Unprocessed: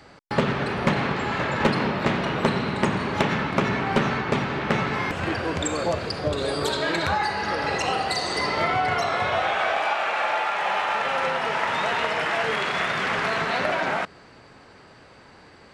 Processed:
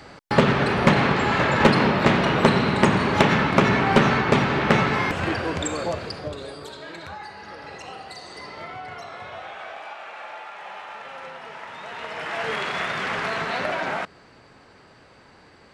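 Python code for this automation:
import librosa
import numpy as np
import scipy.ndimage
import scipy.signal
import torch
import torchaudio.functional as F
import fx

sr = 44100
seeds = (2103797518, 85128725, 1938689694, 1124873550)

y = fx.gain(x, sr, db=fx.line((4.72, 5.0), (6.1, -3.5), (6.66, -13.5), (11.8, -13.5), (12.5, -2.0)))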